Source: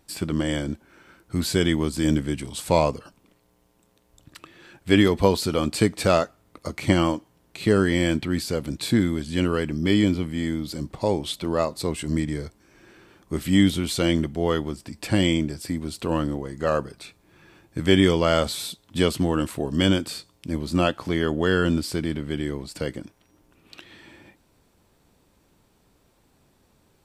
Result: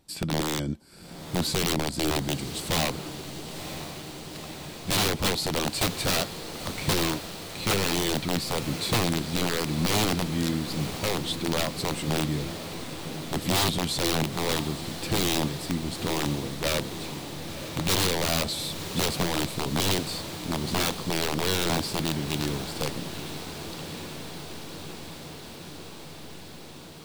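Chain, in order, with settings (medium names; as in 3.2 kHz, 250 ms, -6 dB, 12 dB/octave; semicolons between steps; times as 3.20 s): integer overflow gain 16 dB; fifteen-band graphic EQ 160 Hz +6 dB, 1.6 kHz -3 dB, 4 kHz +4 dB; echo that smears into a reverb 965 ms, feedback 76%, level -11 dB; trim -3.5 dB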